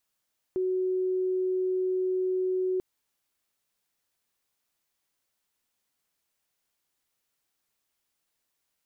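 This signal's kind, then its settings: tone sine 371 Hz -24.5 dBFS 2.24 s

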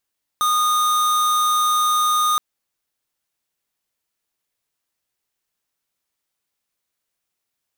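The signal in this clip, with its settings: tone square 1.23 kHz -18 dBFS 1.97 s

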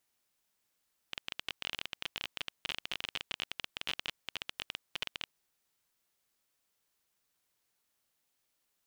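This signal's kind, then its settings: random clicks 22 per s -18.5 dBFS 4.22 s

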